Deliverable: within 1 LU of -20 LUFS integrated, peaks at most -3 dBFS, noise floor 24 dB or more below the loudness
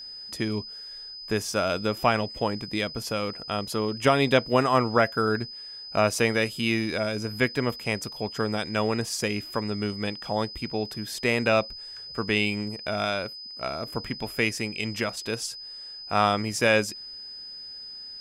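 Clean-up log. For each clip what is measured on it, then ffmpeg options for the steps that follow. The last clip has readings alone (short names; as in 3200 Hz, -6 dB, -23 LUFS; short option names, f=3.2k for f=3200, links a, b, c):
steady tone 5000 Hz; tone level -38 dBFS; loudness -26.5 LUFS; peak -8.0 dBFS; loudness target -20.0 LUFS
-> -af "bandreject=f=5k:w=30"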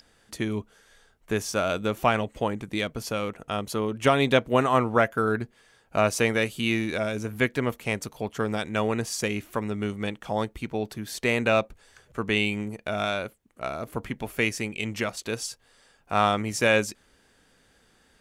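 steady tone none; loudness -27.0 LUFS; peak -8.5 dBFS; loudness target -20.0 LUFS
-> -af "volume=7dB,alimiter=limit=-3dB:level=0:latency=1"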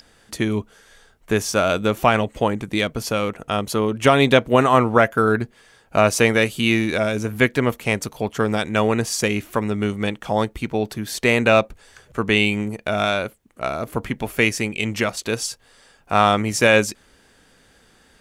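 loudness -20.0 LUFS; peak -3.0 dBFS; noise floor -56 dBFS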